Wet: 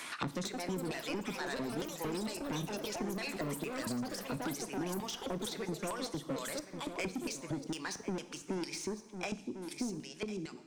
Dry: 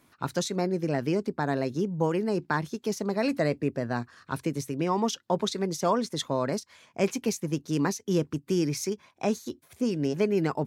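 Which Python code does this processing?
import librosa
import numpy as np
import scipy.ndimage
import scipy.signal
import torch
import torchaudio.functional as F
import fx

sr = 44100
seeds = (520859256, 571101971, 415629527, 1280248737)

p1 = fx.fade_out_tail(x, sr, length_s=2.23)
p2 = fx.peak_eq(p1, sr, hz=8800.0, db=12.0, octaves=0.67)
p3 = fx.level_steps(p2, sr, step_db=18)
p4 = p2 + F.gain(torch.from_numpy(p3), 2.0).numpy()
p5 = fx.filter_lfo_bandpass(p4, sr, shape='square', hz=2.2, low_hz=250.0, high_hz=3300.0, q=1.0)
p6 = 10.0 ** (-29.0 / 20.0) * np.tanh(p5 / 10.0 ** (-29.0 / 20.0))
p7 = fx.wow_flutter(p6, sr, seeds[0], rate_hz=2.1, depth_cents=28.0)
p8 = p7 + fx.echo_single(p7, sr, ms=1049, db=-16.5, dry=0)
p9 = fx.rev_double_slope(p8, sr, seeds[1], early_s=0.67, late_s=2.6, knee_db=-25, drr_db=11.0)
p10 = fx.echo_pitch(p9, sr, ms=278, semitones=6, count=3, db_per_echo=-6.0)
p11 = fx.band_squash(p10, sr, depth_pct=100)
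y = F.gain(torch.from_numpy(p11), -4.5).numpy()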